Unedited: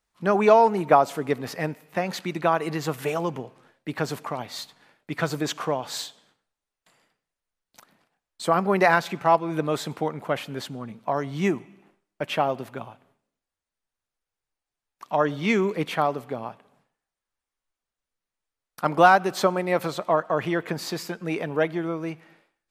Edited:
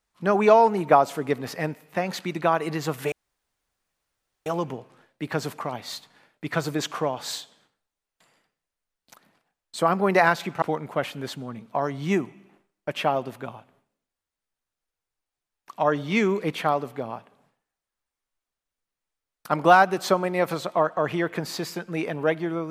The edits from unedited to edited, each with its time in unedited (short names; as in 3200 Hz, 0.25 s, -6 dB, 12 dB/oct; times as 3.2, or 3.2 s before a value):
3.12 insert room tone 1.34 s
9.28–9.95 cut